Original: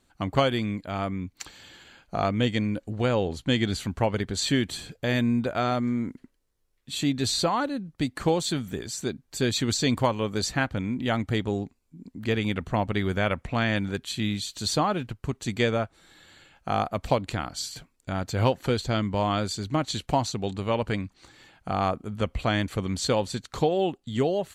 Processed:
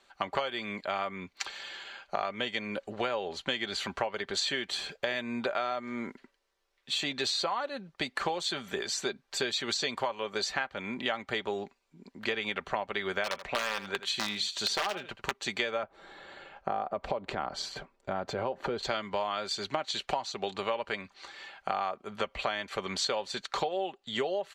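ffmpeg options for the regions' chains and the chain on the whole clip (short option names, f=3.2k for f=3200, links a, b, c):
-filter_complex "[0:a]asettb=1/sr,asplit=3[a][b][c];[a]atrim=end=13.244[d];[b]atrim=start=13.24:end=15.33,asetpts=PTS-STARTPTS,afade=t=in:d=0.004:c=qsin,afade=t=out:st=2.086:d=0.004:c=qsin,aeval=exprs='(mod(7.08*val(0)+1,2)-1)/7.08':c=same,aecho=1:1:81:0.158,atrim=end_sample=92169[e];[c]atrim=start=15.326[f];[d][e]acrossfade=d=0.004:c1=hsin:c2=qsin[g];[g][f]acrossfade=d=0.004:c1=qsin:c2=hsin,asettb=1/sr,asplit=3[h][i][j];[h]atrim=end=15.834[k];[i]atrim=start=15.83:end=18.83,asetpts=PTS-STARTPTS,afade=t=in:d=0.004:c=qsin,afade=t=out:st=2.996:d=0.004:c=qsin,tiltshelf=f=1.4k:g=10,acompressor=threshold=-27dB:ratio=2.5:attack=3.2:release=140:knee=1:detection=peak[l];[j]atrim=start=18.826[m];[k][l]acrossfade=d=0.004:c1=hsin:c2=qsin[n];[n][m]acrossfade=d=0.004:c1=qsin:c2=hsin,acrossover=split=450 5700:gain=0.0891 1 0.158[o][p][q];[o][p][q]amix=inputs=3:normalize=0,aecho=1:1:5.1:0.41,acompressor=threshold=-35dB:ratio=10,volume=7dB"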